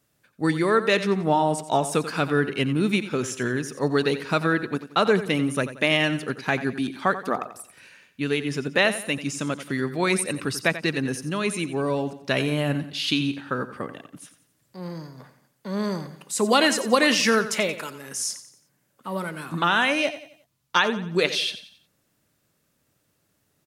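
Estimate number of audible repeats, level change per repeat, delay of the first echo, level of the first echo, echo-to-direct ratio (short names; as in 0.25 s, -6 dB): 3, -8.0 dB, 89 ms, -13.0 dB, -12.0 dB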